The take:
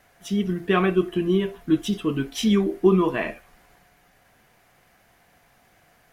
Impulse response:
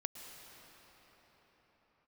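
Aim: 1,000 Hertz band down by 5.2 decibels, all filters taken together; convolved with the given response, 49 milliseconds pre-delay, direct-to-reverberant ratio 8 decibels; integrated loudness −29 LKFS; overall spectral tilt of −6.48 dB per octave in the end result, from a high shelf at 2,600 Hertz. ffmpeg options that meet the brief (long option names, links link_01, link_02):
-filter_complex "[0:a]equalizer=frequency=1000:width_type=o:gain=-6,highshelf=frequency=2600:gain=-4,asplit=2[link_01][link_02];[1:a]atrim=start_sample=2205,adelay=49[link_03];[link_02][link_03]afir=irnorm=-1:irlink=0,volume=-7dB[link_04];[link_01][link_04]amix=inputs=2:normalize=0,volume=-6dB"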